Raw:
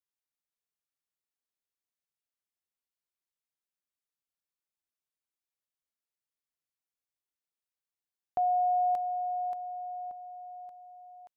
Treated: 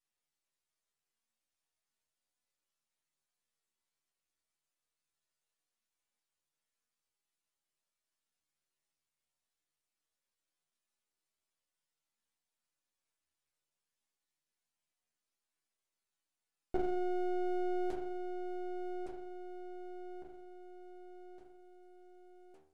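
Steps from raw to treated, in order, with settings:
stiff-string resonator 150 Hz, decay 0.32 s, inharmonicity 0.002
wrong playback speed 15 ips tape played at 7.5 ips
half-wave rectification
level +17 dB

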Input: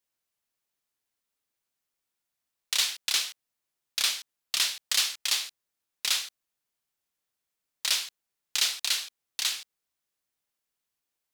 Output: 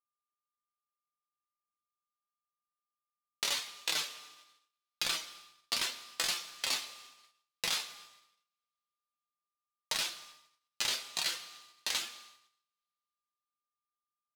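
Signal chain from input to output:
reverb reduction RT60 1.2 s
tilt shelving filter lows +7.5 dB, about 1,200 Hz
downward compressor 6 to 1, threshold −34 dBFS, peak gain reduction 8 dB
flanger 1 Hz, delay 5.5 ms, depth 3.5 ms, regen +48%
tempo change 0.79×
steady tone 1,200 Hz −67 dBFS
coupled-rooms reverb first 0.3 s, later 4.1 s, from −18 dB, DRR 6 dB
noise gate −60 dBFS, range −35 dB
level +8 dB

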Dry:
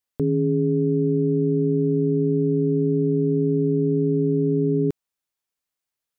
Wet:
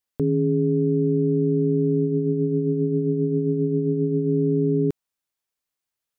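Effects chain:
0:02.03–0:04.31: amplitude tremolo 7.5 Hz, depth 38%

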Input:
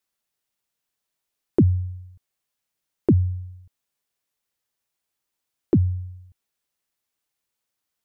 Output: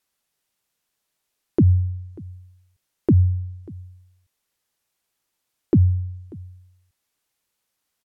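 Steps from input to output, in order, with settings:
treble cut that deepens with the level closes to 1,200 Hz, closed at −16.5 dBFS
brickwall limiter −15.5 dBFS, peak gain reduction 7 dB
on a send: single-tap delay 590 ms −22.5 dB
on the sum: level +5.5 dB

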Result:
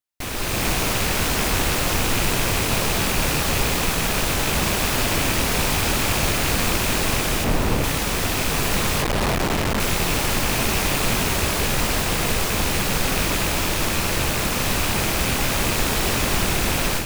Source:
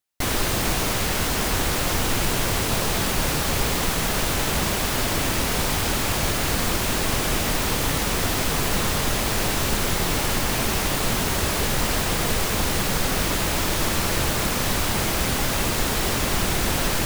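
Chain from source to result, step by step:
loose part that buzzes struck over −28 dBFS, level −18 dBFS
0:07.44–0:07.84: tilt shelving filter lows +5.5 dB, about 1,300 Hz
0:09.02–0:09.80: comparator with hysteresis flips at −22 dBFS
automatic gain control gain up to 11.5 dB
level −6.5 dB

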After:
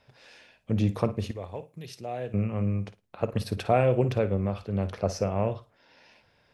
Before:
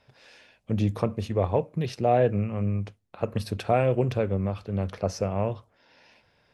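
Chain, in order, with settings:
0:01.31–0:02.34: first-order pre-emphasis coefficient 0.8
flutter between parallel walls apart 9.5 metres, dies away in 0.23 s

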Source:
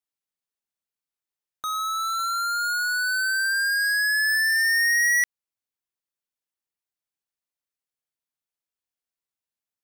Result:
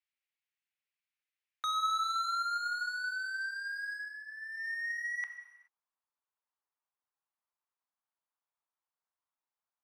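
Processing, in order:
band-pass filter sweep 2,300 Hz → 1,000 Hz, 0:03.97–0:04.70
compressor whose output falls as the input rises −38 dBFS, ratio −1
reverb whose tail is shaped and stops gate 450 ms falling, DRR 7.5 dB

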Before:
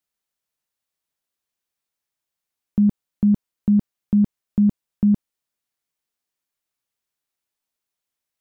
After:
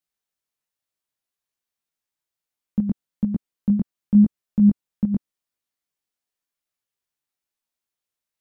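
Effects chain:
dynamic equaliser 230 Hz, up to +4 dB, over −29 dBFS, Q 1.1
chorus effect 0.9 Hz, delay 17 ms, depth 5.1 ms

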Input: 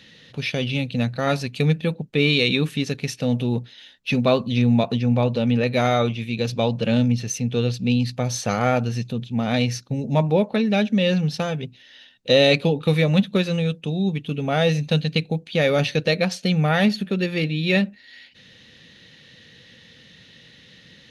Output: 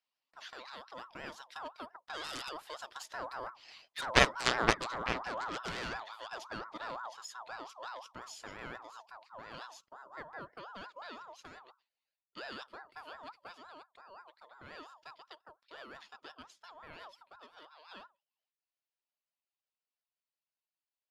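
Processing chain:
source passing by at 0:04.62, 9 m/s, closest 5.6 metres
noise gate with hold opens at −50 dBFS
low-shelf EQ 320 Hz −6.5 dB
in parallel at −1.5 dB: downward compressor, threshold −41 dBFS, peak gain reduction 22 dB
on the sum: harmonic generator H 3 −8 dB, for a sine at −8.5 dBFS
ring modulator whose carrier an LFO sweeps 1,000 Hz, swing 25%, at 5.7 Hz
level +8 dB

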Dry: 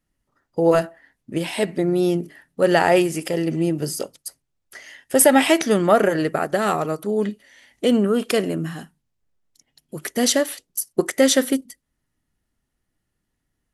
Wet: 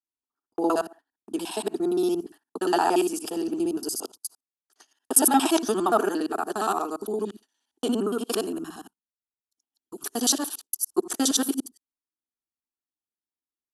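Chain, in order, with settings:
reversed piece by piece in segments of 58 ms
noise gate −39 dBFS, range −19 dB
high-pass filter 340 Hz 6 dB per octave
phaser with its sweep stopped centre 550 Hz, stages 6

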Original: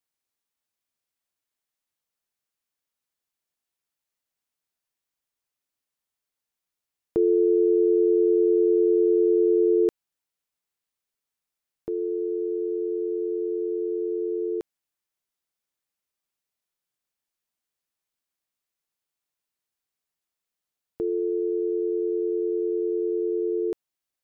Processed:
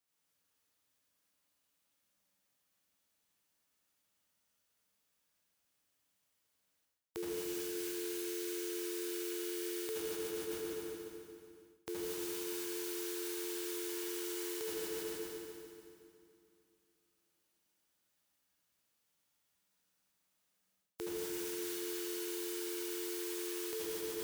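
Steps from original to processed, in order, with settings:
spectral envelope flattened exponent 0.3
high-pass filter 46 Hz
convolution reverb RT60 2.5 s, pre-delay 69 ms, DRR −6 dB
reversed playback
downward compressor 16 to 1, threshold −37 dBFS, peak gain reduction 21.5 dB
reversed playback

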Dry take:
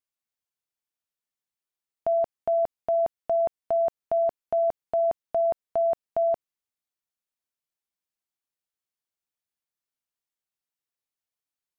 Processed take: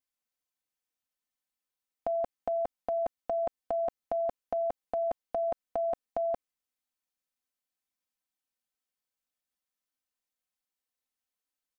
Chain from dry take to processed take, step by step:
comb filter 3.9 ms, depth 82%
level −2.5 dB

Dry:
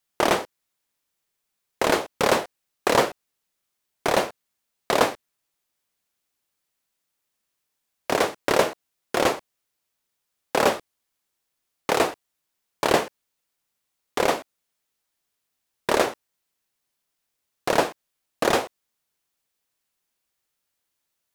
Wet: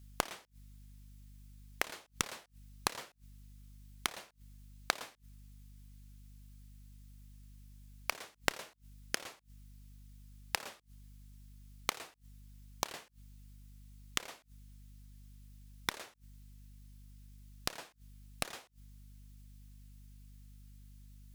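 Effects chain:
mains hum 50 Hz, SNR 27 dB
gate with flip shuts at −24 dBFS, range −28 dB
guitar amp tone stack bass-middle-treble 5-5-5
level +14.5 dB

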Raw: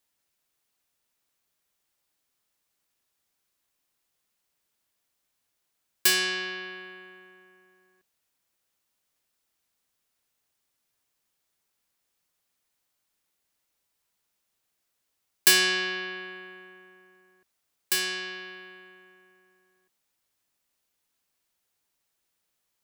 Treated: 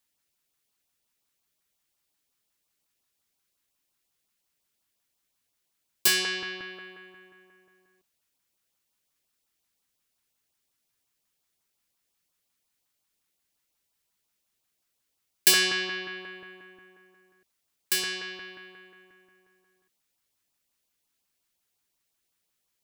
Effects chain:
auto-filter notch saw up 5.6 Hz 380–2,100 Hz

